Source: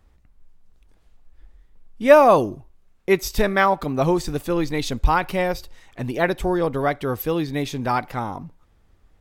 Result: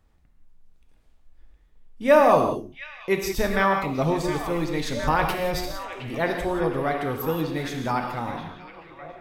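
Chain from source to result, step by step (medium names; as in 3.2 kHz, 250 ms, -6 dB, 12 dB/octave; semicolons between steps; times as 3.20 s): 4.93–6.15 s: transient shaper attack -12 dB, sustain +9 dB; repeats whose band climbs or falls 714 ms, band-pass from 2.7 kHz, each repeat -0.7 oct, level -7.5 dB; gated-style reverb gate 210 ms flat, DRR 3 dB; trim -5 dB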